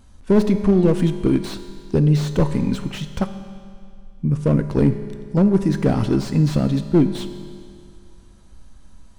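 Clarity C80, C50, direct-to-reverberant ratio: 10.5 dB, 9.5 dB, 8.5 dB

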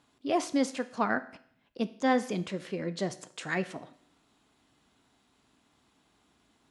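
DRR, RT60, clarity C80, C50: 11.5 dB, 0.65 s, 19.5 dB, 16.5 dB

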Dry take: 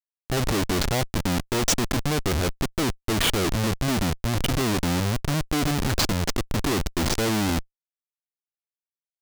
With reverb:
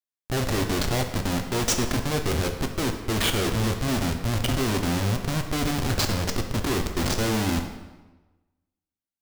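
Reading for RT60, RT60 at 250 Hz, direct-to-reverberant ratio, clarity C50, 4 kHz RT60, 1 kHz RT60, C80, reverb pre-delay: 1.1 s, 1.2 s, 4.0 dB, 7.0 dB, 0.90 s, 1.1 s, 9.0 dB, 4 ms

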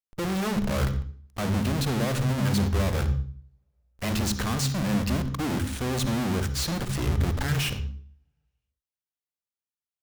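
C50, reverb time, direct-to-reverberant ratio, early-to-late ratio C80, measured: 11.0 dB, 0.45 s, 10.5 dB, 14.0 dB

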